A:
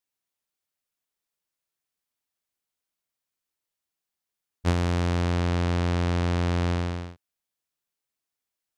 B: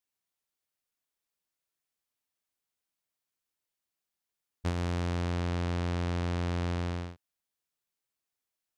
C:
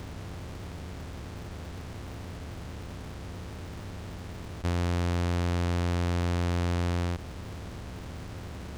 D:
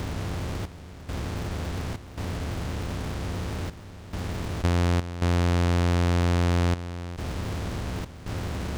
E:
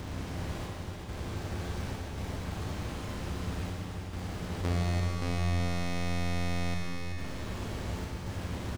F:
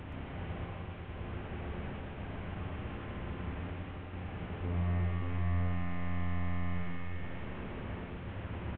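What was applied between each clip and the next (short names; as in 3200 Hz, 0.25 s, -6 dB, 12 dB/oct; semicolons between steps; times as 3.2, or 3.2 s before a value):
compressor 5:1, threshold -27 dBFS, peak gain reduction 7.5 dB; gain -2 dB
per-bin compression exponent 0.2; in parallel at -10 dB: Schmitt trigger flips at -41 dBFS
compressor, threshold -29 dBFS, peak gain reduction 4 dB; step gate "xxx..xxxx.xxxx" 69 bpm -12 dB; gain +9 dB
echo 0.382 s -5.5 dB; Schroeder reverb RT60 2.3 s, combs from 30 ms, DRR -1 dB; gain -8.5 dB
delta modulation 16 kbps, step -43 dBFS; echo 0.125 s -5 dB; gain -5 dB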